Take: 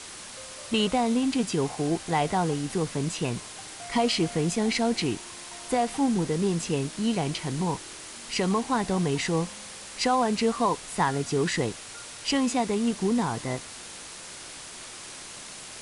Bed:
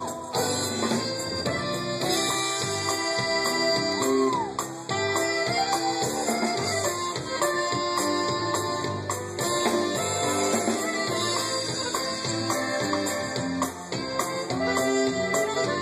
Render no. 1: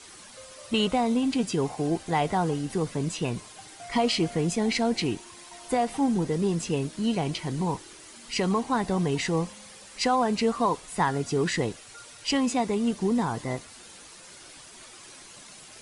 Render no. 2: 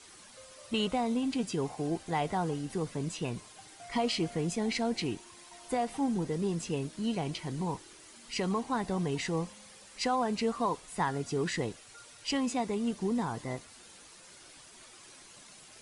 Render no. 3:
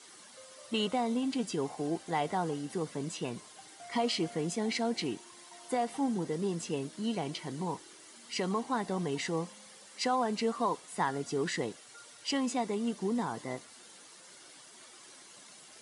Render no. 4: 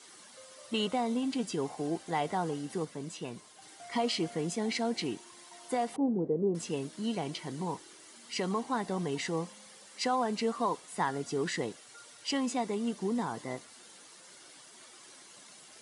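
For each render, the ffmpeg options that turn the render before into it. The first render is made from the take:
ffmpeg -i in.wav -af "afftdn=noise_reduction=9:noise_floor=-42" out.wav
ffmpeg -i in.wav -af "volume=-6dB" out.wav
ffmpeg -i in.wav -af "highpass=180,bandreject=frequency=2500:width=14" out.wav
ffmpeg -i in.wav -filter_complex "[0:a]asettb=1/sr,asplit=3[link_01][link_02][link_03];[link_01]atrim=end=5.964[link_04];[link_02]atrim=start=5.96:end=6.55,asetpts=PTS-STARTPTS,afade=type=in:duration=0.004:curve=qsin,afade=type=out:start_time=0.586:duration=0.004:curve=qsin,lowpass=frequency=500:width_type=q:width=1.8[link_05];[link_03]atrim=start=6.546[link_06];[link_04][link_05]acrossfade=duration=0.004:curve1=hsin:curve2=qsin[link_07];[link_07][link_06]acrossfade=duration=0.004:curve1=qsin:curve2=hsin,asplit=3[link_08][link_09][link_10];[link_08]atrim=end=2.852[link_11];[link_09]atrim=start=2.848:end=3.622,asetpts=PTS-STARTPTS,volume=-3.5dB[link_12];[link_10]atrim=start=3.618[link_13];[link_11][link_12]acrossfade=duration=0.004:curve1=hsin:curve2=hsin[link_14];[link_14][link_13]acrossfade=duration=0.004:curve1=hsin:curve2=hsin" out.wav

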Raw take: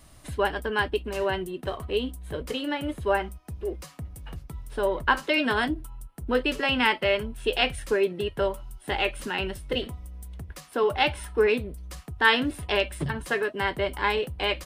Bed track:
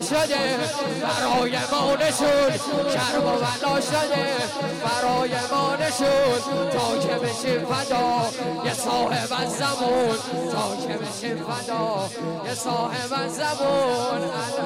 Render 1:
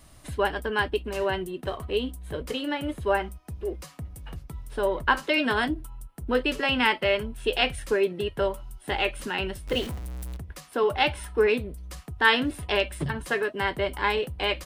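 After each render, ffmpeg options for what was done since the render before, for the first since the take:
ffmpeg -i in.wav -filter_complex "[0:a]asettb=1/sr,asplit=3[link_01][link_02][link_03];[link_01]atrim=end=9.674[link_04];[link_02]atrim=start=9.67:end=10.37,asetpts=PTS-STARTPTS,afade=type=in:duration=0.004:curve=qsin,afade=type=out:start_time=0.696:duration=0.004:curve=qsin,aeval=exprs='val(0)+0.5*0.0188*sgn(val(0))':channel_layout=same[link_05];[link_03]atrim=start=10.366[link_06];[link_04][link_05]acrossfade=duration=0.004:curve1=hsin:curve2=qsin[link_07];[link_07][link_06]acrossfade=duration=0.004:curve1=qsin:curve2=hsin" out.wav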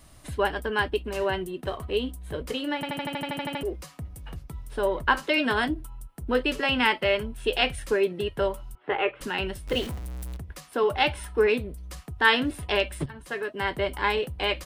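ffmpeg -i in.wav -filter_complex "[0:a]asettb=1/sr,asplit=3[link_01][link_02][link_03];[link_01]atrim=end=8.754[link_04];[link_02]atrim=start=8.75:end=9.21,asetpts=PTS-STARTPTS,afade=type=in:duration=0.004:curve=qsin,afade=type=out:start_time=0.456:duration=0.004:curve=qsin,highpass=190,equalizer=frequency=230:width_type=q:width=4:gain=-9,equalizer=frequency=440:width_type=q:width=4:gain=8,equalizer=frequency=1200:width_type=q:width=4:gain=6,lowpass=frequency=2600:width=0.5412,lowpass=frequency=2600:width=1.3066[link_05];[link_03]atrim=start=9.206[link_06];[link_04][link_05]acrossfade=duration=0.004:curve1=hsin:curve2=qsin[link_07];[link_07][link_06]acrossfade=duration=0.004:curve1=qsin:curve2=hsin,asplit=13[link_08][link_09][link_10][link_11][link_12][link_13][link_14][link_15][link_16][link_17][link_18][link_19][link_20];[link_08]atrim=end=2.832[link_21];[link_09]atrim=start=2.748:end=2.832[link_22];[link_10]atrim=start=2.748:end=2.832[link_23];[link_11]atrim=start=2.748:end=2.832[link_24];[link_12]atrim=start=2.748:end=2.832[link_25];[link_13]atrim=start=2.748:end=2.832[link_26];[link_14]atrim=start=2.748:end=2.832[link_27];[link_15]atrim=start=2.748:end=2.832[link_28];[link_16]atrim=start=2.748:end=2.832[link_29];[link_17]atrim=start=2.748:end=2.832[link_30];[link_18]atrim=start=2.748:end=2.832[link_31];[link_19]atrim=start=3.628:end=13.06,asetpts=PTS-STARTPTS,afade=type=out:start_time=9.428:duration=0.004:curve=hsin:silence=0.177828[link_32];[link_20]atrim=start=13.06,asetpts=PTS-STARTPTS,afade=type=in:duration=0.7:silence=0.177828[link_33];[link_21][link_22]acrossfade=duration=0.004:curve1=hsin:curve2=hsin[link_34];[link_34][link_23]acrossfade=duration=0.004:curve1=hsin:curve2=hsin[link_35];[link_35][link_24]acrossfade=duration=0.004:curve1=hsin:curve2=hsin[link_36];[link_36][link_25]acrossfade=duration=0.004:curve1=hsin:curve2=hsin[link_37];[link_37][link_26]acrossfade=duration=0.004:curve1=hsin:curve2=hsin[link_38];[link_38][link_27]acrossfade=duration=0.004:curve1=hsin:curve2=hsin[link_39];[link_39][link_28]acrossfade=duration=0.004:curve1=hsin:curve2=hsin[link_40];[link_40][link_29]acrossfade=duration=0.004:curve1=hsin:curve2=hsin[link_41];[link_41][link_30]acrossfade=duration=0.004:curve1=hsin:curve2=hsin[link_42];[link_42][link_31]acrossfade=duration=0.004:curve1=hsin:curve2=hsin[link_43];[link_32][link_33]concat=n=2:v=0:a=1[link_44];[link_43][link_44]acrossfade=duration=0.004:curve1=hsin:curve2=hsin" out.wav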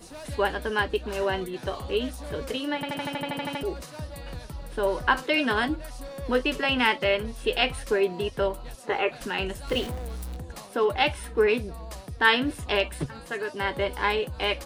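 ffmpeg -i in.wav -i bed.wav -filter_complex "[1:a]volume=-21dB[link_01];[0:a][link_01]amix=inputs=2:normalize=0" out.wav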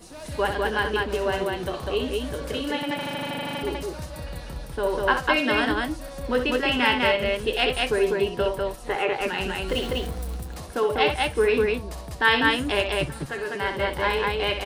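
ffmpeg -i in.wav -af "aecho=1:1:64.14|198.3:0.398|0.794" out.wav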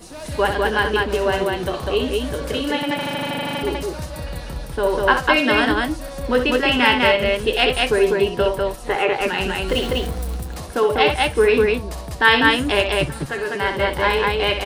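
ffmpeg -i in.wav -af "volume=5.5dB,alimiter=limit=-2dB:level=0:latency=1" out.wav

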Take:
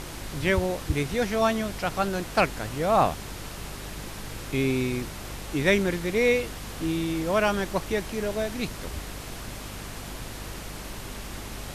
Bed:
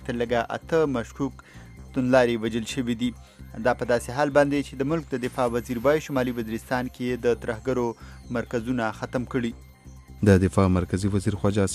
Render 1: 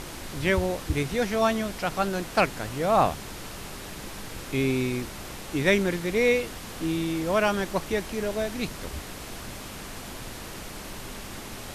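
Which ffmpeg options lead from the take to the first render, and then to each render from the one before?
ffmpeg -i in.wav -af "bandreject=frequency=50:width_type=h:width=4,bandreject=frequency=100:width_type=h:width=4,bandreject=frequency=150:width_type=h:width=4" out.wav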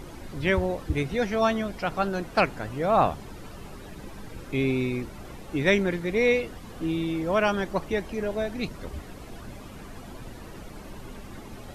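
ffmpeg -i in.wav -af "afftdn=noise_reduction=12:noise_floor=-39" out.wav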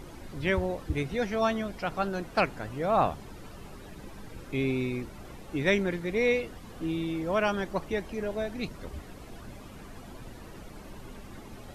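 ffmpeg -i in.wav -af "volume=-3.5dB" out.wav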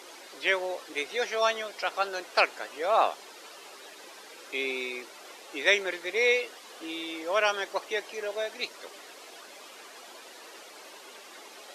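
ffmpeg -i in.wav -af "highpass=frequency=400:width=0.5412,highpass=frequency=400:width=1.3066,equalizer=frequency=4800:width_type=o:width=2.6:gain=9" out.wav

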